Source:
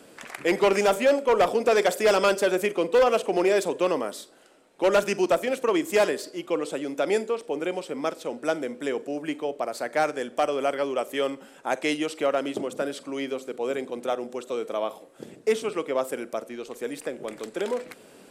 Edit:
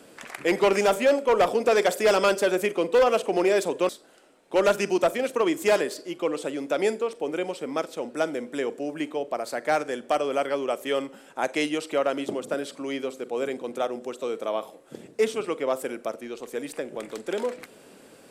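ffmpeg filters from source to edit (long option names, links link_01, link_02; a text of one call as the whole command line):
ffmpeg -i in.wav -filter_complex "[0:a]asplit=2[link_01][link_02];[link_01]atrim=end=3.892[link_03];[link_02]atrim=start=4.168[link_04];[link_03][link_04]acrossfade=duration=0.004:curve1=hsin:curve2=hsin" out.wav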